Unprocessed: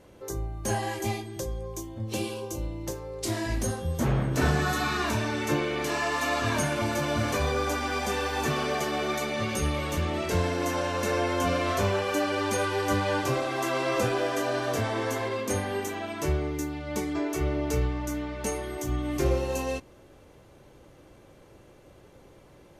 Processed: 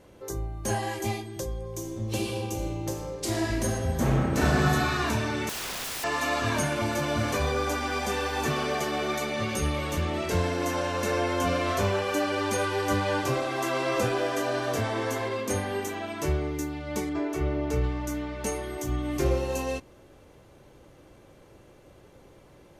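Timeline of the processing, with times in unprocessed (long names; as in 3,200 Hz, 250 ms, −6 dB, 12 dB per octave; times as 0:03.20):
0:01.60–0:04.62: thrown reverb, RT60 2.4 s, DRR 1.5 dB
0:05.49–0:06.04: wrap-around overflow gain 29.5 dB
0:17.09–0:17.84: high-shelf EQ 3,700 Hz −8 dB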